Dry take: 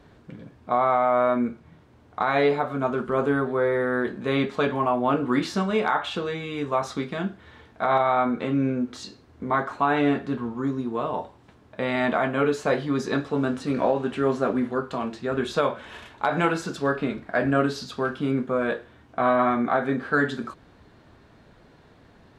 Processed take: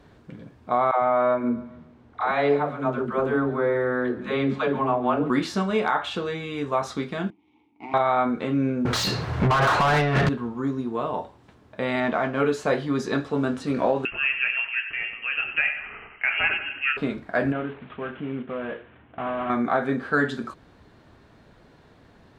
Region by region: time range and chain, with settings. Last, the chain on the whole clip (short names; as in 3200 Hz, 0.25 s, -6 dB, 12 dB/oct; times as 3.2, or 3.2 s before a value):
0.91–5.3 LPF 3200 Hz 6 dB/oct + dispersion lows, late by 0.114 s, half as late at 360 Hz + feedback echo 0.139 s, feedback 46%, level -18 dB
7.3–7.94 minimum comb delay 0.32 ms + vowel filter u
8.85–10.29 resonant low shelf 190 Hz +9.5 dB, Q 3 + negative-ratio compressor -24 dBFS, ratio -0.5 + overdrive pedal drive 32 dB, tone 2200 Hz, clips at -12 dBFS
12–12.4 G.711 law mismatch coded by A + air absorption 110 m
14.05–16.97 low shelf 250 Hz -7 dB + feedback echo 93 ms, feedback 50%, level -10 dB + inverted band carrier 3000 Hz
17.52–19.5 CVSD 16 kbps + HPF 52 Hz + compressor 1.5:1, threshold -37 dBFS
whole clip: dry